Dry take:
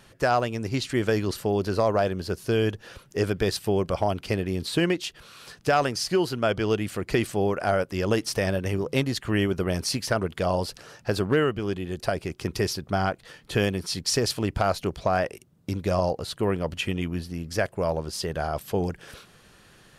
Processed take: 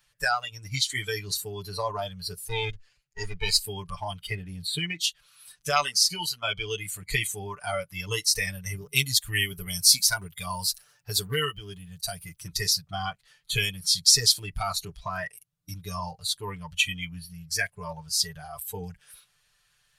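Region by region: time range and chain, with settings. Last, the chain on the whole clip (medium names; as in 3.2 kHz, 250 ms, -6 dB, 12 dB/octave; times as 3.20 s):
2.48–3.59 s: comb filter that takes the minimum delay 0.42 ms + low-pass 8.6 kHz + three bands expanded up and down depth 70%
4.26–4.99 s: treble shelf 2.5 kHz -7.5 dB + band-stop 1.1 kHz, Q 7.4 + three bands compressed up and down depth 40%
8.76–12.37 s: treble shelf 10 kHz +12 dB + tape noise reduction on one side only decoder only
whole clip: spectral noise reduction 18 dB; amplifier tone stack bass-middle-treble 10-0-10; comb 6.8 ms, depth 89%; trim +7 dB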